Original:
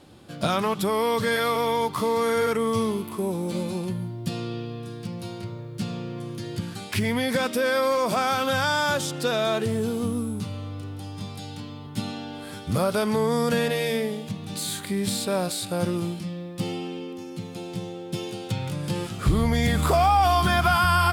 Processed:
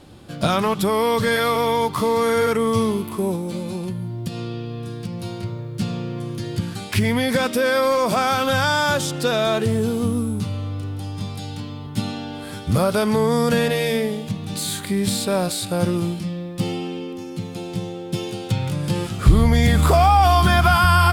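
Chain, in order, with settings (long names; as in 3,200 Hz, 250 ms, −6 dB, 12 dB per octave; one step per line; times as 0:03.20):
low-shelf EQ 78 Hz +9.5 dB
0:03.35–0:05.26: downward compressor, threshold −28 dBFS, peak gain reduction 7.5 dB
level +4 dB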